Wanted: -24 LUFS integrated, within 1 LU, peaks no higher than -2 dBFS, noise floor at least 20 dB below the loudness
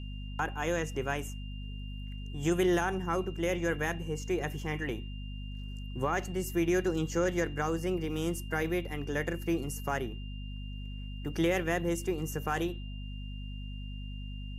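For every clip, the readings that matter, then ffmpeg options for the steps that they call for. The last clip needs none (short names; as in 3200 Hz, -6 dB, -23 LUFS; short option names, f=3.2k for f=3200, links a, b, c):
hum 50 Hz; harmonics up to 250 Hz; hum level -37 dBFS; steady tone 2800 Hz; tone level -51 dBFS; loudness -33.5 LUFS; peak -17.5 dBFS; loudness target -24.0 LUFS
-> -af "bandreject=f=50:t=h:w=4,bandreject=f=100:t=h:w=4,bandreject=f=150:t=h:w=4,bandreject=f=200:t=h:w=4,bandreject=f=250:t=h:w=4"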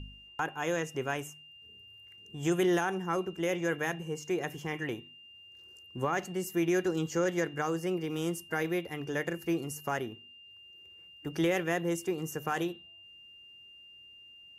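hum none; steady tone 2800 Hz; tone level -51 dBFS
-> -af "bandreject=f=2.8k:w=30"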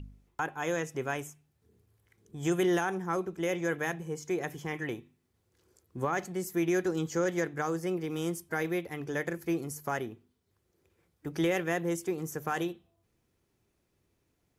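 steady tone none; loudness -32.5 LUFS; peak -18.0 dBFS; loudness target -24.0 LUFS
-> -af "volume=8.5dB"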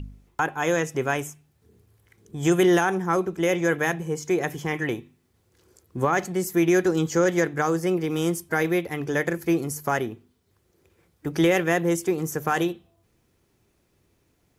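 loudness -24.5 LUFS; peak -9.5 dBFS; noise floor -68 dBFS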